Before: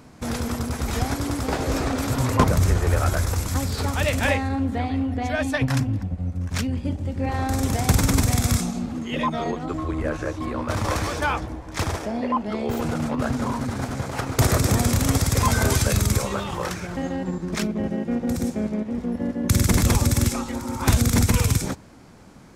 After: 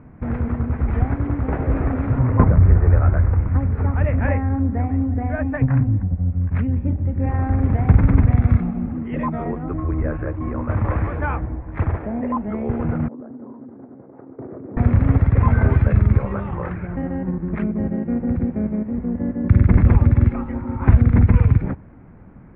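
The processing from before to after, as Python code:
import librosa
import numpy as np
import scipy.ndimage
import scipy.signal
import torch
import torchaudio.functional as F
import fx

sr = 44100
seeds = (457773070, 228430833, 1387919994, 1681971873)

y = fx.lowpass(x, sr, hz=2300.0, slope=12, at=(2.18, 6.32))
y = fx.ladder_bandpass(y, sr, hz=390.0, resonance_pct=40, at=(13.08, 14.77))
y = scipy.signal.sosfilt(scipy.signal.butter(6, 2200.0, 'lowpass', fs=sr, output='sos'), y)
y = fx.low_shelf(y, sr, hz=240.0, db=11.5)
y = F.gain(torch.from_numpy(y), -3.0).numpy()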